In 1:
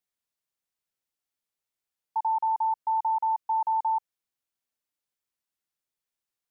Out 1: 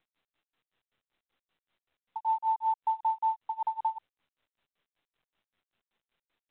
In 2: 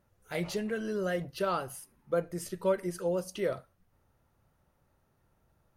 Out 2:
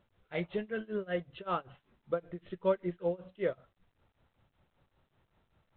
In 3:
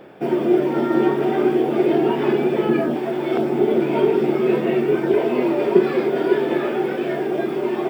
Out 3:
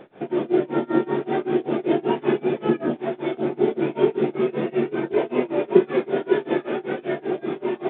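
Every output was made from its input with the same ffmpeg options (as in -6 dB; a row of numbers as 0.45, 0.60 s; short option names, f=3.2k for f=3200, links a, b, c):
-af "tremolo=f=5.2:d=0.96" -ar 8000 -c:a pcm_mulaw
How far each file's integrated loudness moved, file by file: -3.5, -2.5, -4.0 LU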